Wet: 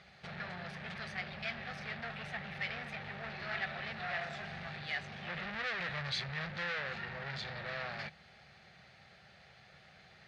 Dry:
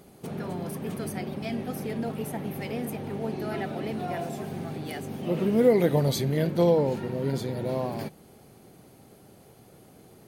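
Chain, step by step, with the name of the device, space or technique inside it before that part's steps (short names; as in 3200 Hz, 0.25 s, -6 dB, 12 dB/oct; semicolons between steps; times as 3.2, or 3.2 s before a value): scooped metal amplifier (tube stage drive 34 dB, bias 0.4; speaker cabinet 92–3900 Hz, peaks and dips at 110 Hz -9 dB, 280 Hz -6 dB, 440 Hz -7 dB, 1000 Hz -9 dB, 1800 Hz +6 dB, 3100 Hz -5 dB; passive tone stack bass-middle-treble 10-0-10); gain +11.5 dB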